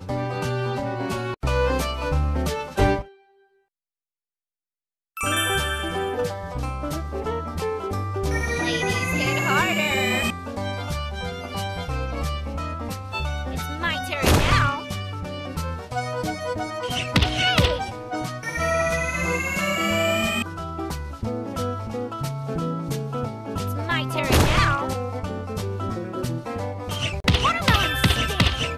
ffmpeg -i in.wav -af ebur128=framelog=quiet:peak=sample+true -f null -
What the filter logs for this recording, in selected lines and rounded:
Integrated loudness:
  I:         -24.4 LUFS
  Threshold: -34.5 LUFS
Loudness range:
  LRA:         5.2 LU
  Threshold: -44.9 LUFS
  LRA low:   -28.2 LUFS
  LRA high:  -22.9 LUFS
Sample peak:
  Peak:       -9.3 dBFS
True peak:
  Peak:       -8.8 dBFS